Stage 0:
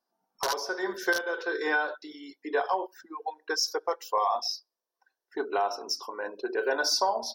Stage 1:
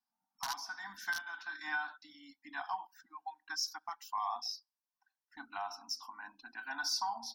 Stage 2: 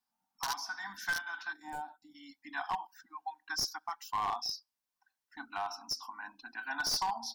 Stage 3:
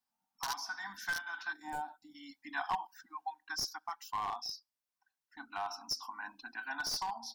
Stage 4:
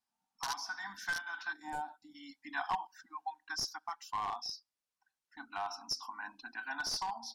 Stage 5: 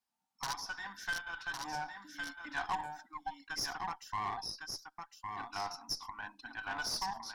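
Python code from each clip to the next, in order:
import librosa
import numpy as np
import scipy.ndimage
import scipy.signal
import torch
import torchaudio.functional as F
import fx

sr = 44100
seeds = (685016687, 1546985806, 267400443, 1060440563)

y1 = scipy.signal.sosfilt(scipy.signal.ellip(3, 1.0, 40, [270.0, 780.0], 'bandstop', fs=sr, output='sos'), x)
y1 = y1 * librosa.db_to_amplitude(-8.0)
y2 = np.minimum(y1, 2.0 * 10.0 ** (-31.0 / 20.0) - y1)
y2 = fx.spec_box(y2, sr, start_s=1.53, length_s=0.62, low_hz=950.0, high_hz=6800.0, gain_db=-18)
y2 = y2 * librosa.db_to_amplitude(3.5)
y3 = fx.rider(y2, sr, range_db=3, speed_s=0.5)
y3 = y3 * librosa.db_to_amplitude(-1.5)
y4 = scipy.signal.sosfilt(scipy.signal.butter(2, 11000.0, 'lowpass', fs=sr, output='sos'), y3)
y5 = y4 + 10.0 ** (-5.5 / 20.0) * np.pad(y4, (int(1108 * sr / 1000.0), 0))[:len(y4)]
y5 = fx.cheby_harmonics(y5, sr, harmonics=(8,), levels_db=(-23,), full_scale_db=-21.5)
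y5 = y5 * librosa.db_to_amplitude(-1.0)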